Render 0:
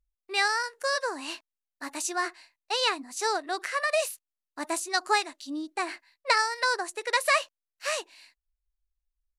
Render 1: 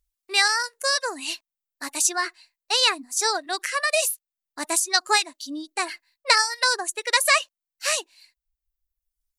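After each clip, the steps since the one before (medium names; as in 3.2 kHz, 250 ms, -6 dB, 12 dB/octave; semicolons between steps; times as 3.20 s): reverb removal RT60 1 s; treble shelf 2.9 kHz +11.5 dB; trim +1.5 dB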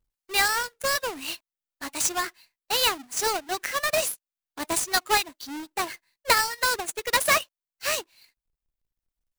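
square wave that keeps the level; trim -6.5 dB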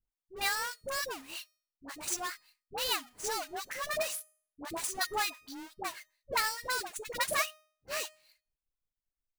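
feedback comb 620 Hz, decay 0.49 s, mix 50%; phase dispersion highs, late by 75 ms, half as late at 670 Hz; trim -3.5 dB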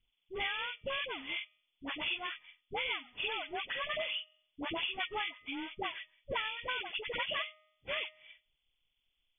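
knee-point frequency compression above 1.9 kHz 4:1; compression 4:1, threshold -42 dBFS, peak gain reduction 16 dB; trim +6 dB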